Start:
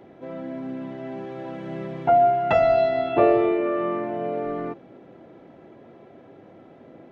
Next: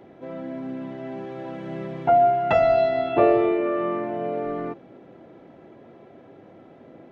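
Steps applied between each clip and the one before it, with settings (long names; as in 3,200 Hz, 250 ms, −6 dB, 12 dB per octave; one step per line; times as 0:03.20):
no processing that can be heard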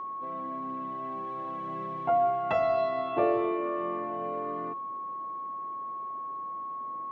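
steady tone 1,100 Hz −26 dBFS
low-shelf EQ 75 Hz −10.5 dB
level −8 dB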